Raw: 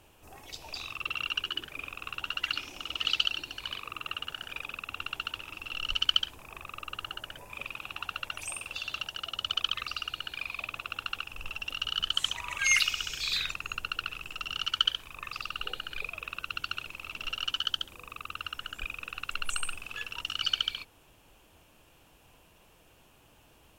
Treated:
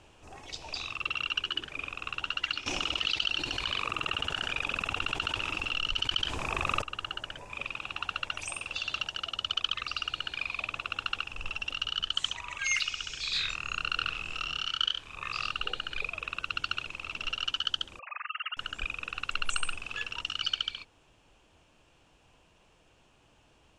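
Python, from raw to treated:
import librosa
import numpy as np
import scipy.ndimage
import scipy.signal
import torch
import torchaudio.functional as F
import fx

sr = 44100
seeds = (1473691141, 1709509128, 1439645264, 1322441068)

y = fx.env_flatten(x, sr, amount_pct=70, at=(2.66, 6.82))
y = fx.doubler(y, sr, ms=27.0, db=-2.0, at=(13.32, 15.52))
y = fx.sine_speech(y, sr, at=(17.99, 18.57))
y = scipy.signal.sosfilt(scipy.signal.butter(4, 7900.0, 'lowpass', fs=sr, output='sos'), y)
y = fx.rider(y, sr, range_db=4, speed_s=0.5)
y = y * librosa.db_to_amplitude(-1.5)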